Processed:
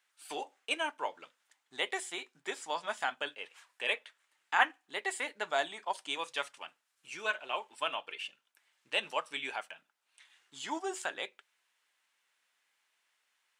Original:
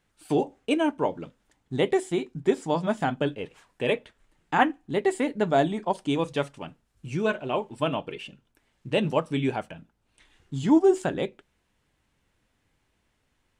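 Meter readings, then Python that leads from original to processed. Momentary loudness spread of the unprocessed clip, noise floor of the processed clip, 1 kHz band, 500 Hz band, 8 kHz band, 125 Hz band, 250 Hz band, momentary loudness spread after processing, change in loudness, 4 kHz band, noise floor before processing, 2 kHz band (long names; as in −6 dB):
15 LU, −80 dBFS, −7.0 dB, −15.0 dB, 0.0 dB, below −35 dB, −24.0 dB, 11 LU, −9.5 dB, 0.0 dB, −73 dBFS, −1.0 dB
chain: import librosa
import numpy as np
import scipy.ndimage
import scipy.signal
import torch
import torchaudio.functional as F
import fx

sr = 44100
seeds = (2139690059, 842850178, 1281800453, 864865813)

y = scipy.signal.sosfilt(scipy.signal.butter(2, 1200.0, 'highpass', fs=sr, output='sos'), x)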